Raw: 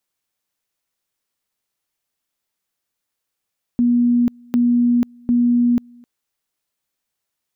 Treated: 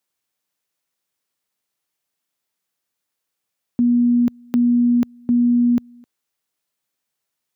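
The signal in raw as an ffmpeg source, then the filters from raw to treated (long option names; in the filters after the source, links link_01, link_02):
-f lavfi -i "aevalsrc='pow(10,(-12-29.5*gte(mod(t,0.75),0.49))/20)*sin(2*PI*241*t)':duration=2.25:sample_rate=44100"
-af "highpass=91"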